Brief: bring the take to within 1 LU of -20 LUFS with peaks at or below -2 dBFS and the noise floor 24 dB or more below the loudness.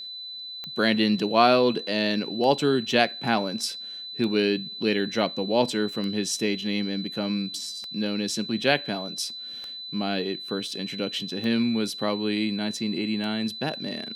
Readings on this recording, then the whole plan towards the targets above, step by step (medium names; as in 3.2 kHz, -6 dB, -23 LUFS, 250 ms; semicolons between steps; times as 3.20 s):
clicks found 8; steady tone 4 kHz; tone level -35 dBFS; loudness -26.0 LUFS; peak level -3.0 dBFS; loudness target -20.0 LUFS
-> de-click; band-stop 4 kHz, Q 30; trim +6 dB; peak limiter -2 dBFS